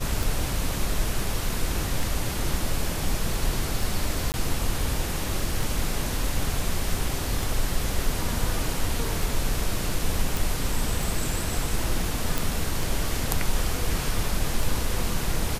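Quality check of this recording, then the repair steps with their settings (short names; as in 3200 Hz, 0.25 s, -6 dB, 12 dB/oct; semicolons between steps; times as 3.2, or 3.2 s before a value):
tick 33 1/3 rpm
4.32–4.34 gap 19 ms
10.37 pop
12.38 pop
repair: de-click; interpolate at 4.32, 19 ms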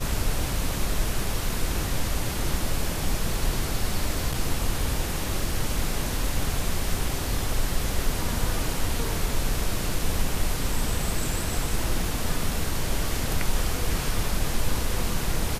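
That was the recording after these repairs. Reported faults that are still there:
none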